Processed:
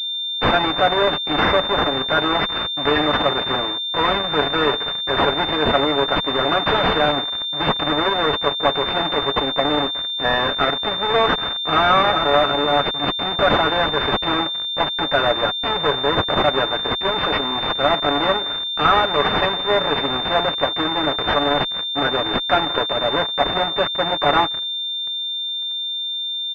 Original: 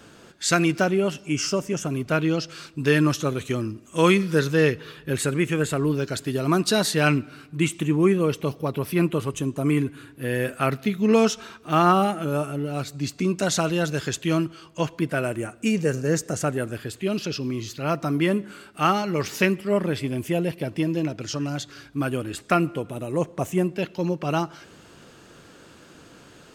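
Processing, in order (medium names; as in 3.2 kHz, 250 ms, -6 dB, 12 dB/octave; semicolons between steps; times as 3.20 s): fuzz box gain 43 dB, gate -39 dBFS; bit crusher 9-bit; high-pass 520 Hz 12 dB/octave; Chebyshev shaper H 7 -19 dB, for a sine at -5.5 dBFS; comb 7 ms, depth 65%; class-D stage that switches slowly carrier 3.6 kHz; trim +2 dB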